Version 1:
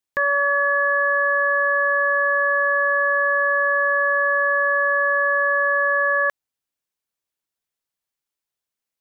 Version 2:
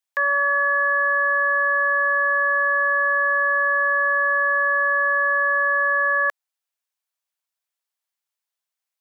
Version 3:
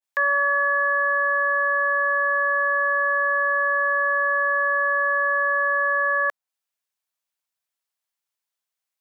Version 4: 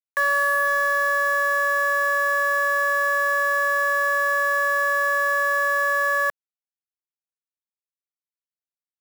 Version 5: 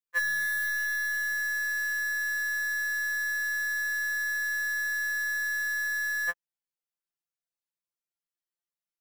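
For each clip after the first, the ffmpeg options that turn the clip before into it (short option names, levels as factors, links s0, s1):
-af "highpass=f=600:w=0.5412,highpass=f=600:w=1.3066"
-af "adynamicequalizer=threshold=0.02:dfrequency=1600:dqfactor=0.7:tfrequency=1600:tqfactor=0.7:attack=5:release=100:ratio=0.375:range=2:mode=cutabove:tftype=highshelf"
-af "acrusher=bits=6:dc=4:mix=0:aa=0.000001"
-af "afftfilt=real='re*2.83*eq(mod(b,8),0)':imag='im*2.83*eq(mod(b,8),0)':win_size=2048:overlap=0.75"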